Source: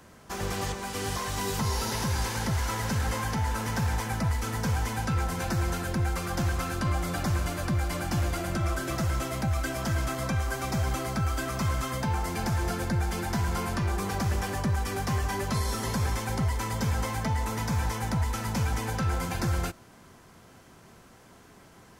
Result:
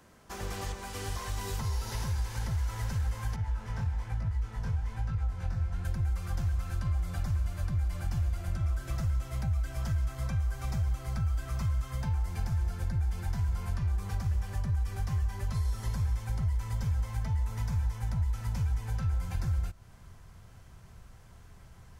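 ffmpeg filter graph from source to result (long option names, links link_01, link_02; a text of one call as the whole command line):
ffmpeg -i in.wav -filter_complex "[0:a]asettb=1/sr,asplit=3[link_01][link_02][link_03];[link_01]atrim=end=3.364[link_04];[link_02]atrim=start=3.36:end=5.85,asetpts=PTS-STARTPTS,afade=type=in:duration=0.004:curve=qsin,afade=type=out:start_time=2.486:duration=0.004:curve=qsin,aemphasis=mode=reproduction:type=50kf,flanger=delay=18.5:depth=6.4:speed=1.1[link_05];[link_03]atrim=start=5.846[link_06];[link_04][link_05]acrossfade=duration=0.004:curve1=hsin:curve2=qsin[link_07];[link_07][link_06]acrossfade=duration=0.004:curve1=qsin:curve2=hsin,asubboost=boost=11.5:cutoff=82,acompressor=threshold=-24dB:ratio=3,volume=-6dB" out.wav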